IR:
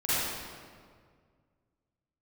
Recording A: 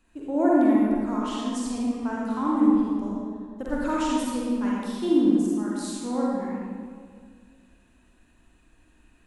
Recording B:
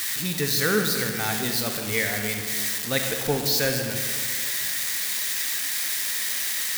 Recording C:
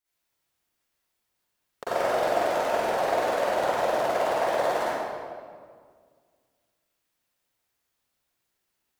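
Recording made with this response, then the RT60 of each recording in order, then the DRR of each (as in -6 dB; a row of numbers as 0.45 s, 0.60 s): C; 1.9 s, 2.0 s, 1.9 s; -5.5 dB, 4.0 dB, -13.5 dB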